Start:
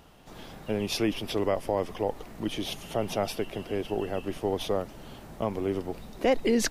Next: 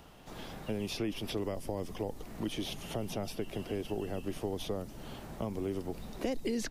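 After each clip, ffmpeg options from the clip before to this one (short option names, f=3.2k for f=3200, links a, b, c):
-filter_complex "[0:a]acrossover=split=340|4400[a][b][c];[a]acompressor=threshold=-34dB:ratio=4[d];[b]acompressor=threshold=-41dB:ratio=4[e];[c]acompressor=threshold=-47dB:ratio=4[f];[d][e][f]amix=inputs=3:normalize=0"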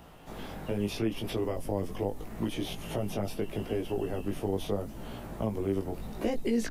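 -af "equalizer=f=5k:t=o:w=1.6:g=-6,flanger=delay=17:depth=3.6:speed=0.77,volume=7dB"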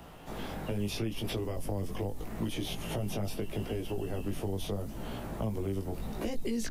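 -filter_complex "[0:a]acrossover=split=170|3000[a][b][c];[b]acompressor=threshold=-36dB:ratio=6[d];[a][d][c]amix=inputs=3:normalize=0,asplit=2[e][f];[f]asoftclip=type=tanh:threshold=-32dB,volume=-10dB[g];[e][g]amix=inputs=2:normalize=0"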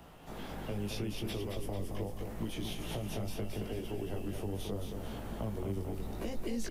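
-af "aecho=1:1:221|442|663|884|1105:0.531|0.234|0.103|0.0452|0.0199,volume=-4.5dB"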